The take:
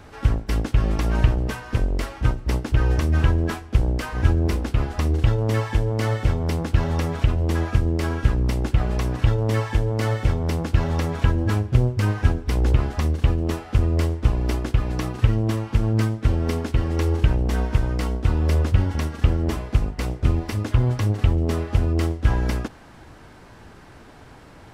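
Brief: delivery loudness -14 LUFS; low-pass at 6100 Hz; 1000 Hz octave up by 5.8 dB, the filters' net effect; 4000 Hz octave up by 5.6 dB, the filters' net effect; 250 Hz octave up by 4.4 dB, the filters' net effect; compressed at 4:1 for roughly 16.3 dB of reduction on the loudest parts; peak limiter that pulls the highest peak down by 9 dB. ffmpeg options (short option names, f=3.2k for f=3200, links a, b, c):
-af "lowpass=6.1k,equalizer=f=250:t=o:g=5.5,equalizer=f=1k:t=o:g=6.5,equalizer=f=4k:t=o:g=8,acompressor=threshold=-32dB:ratio=4,volume=23dB,alimiter=limit=-3.5dB:level=0:latency=1"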